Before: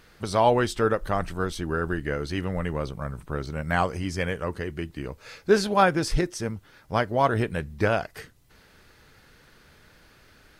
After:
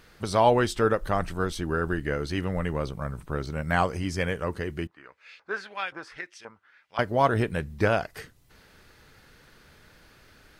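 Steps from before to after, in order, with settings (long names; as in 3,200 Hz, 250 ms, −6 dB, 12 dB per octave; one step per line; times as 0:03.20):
0:04.87–0:06.99: auto-filter band-pass saw up 1.9 Hz 970–3,200 Hz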